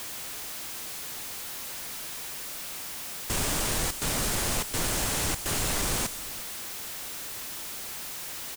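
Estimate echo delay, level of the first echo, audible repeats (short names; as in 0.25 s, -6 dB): 0.358 s, -17.5 dB, 1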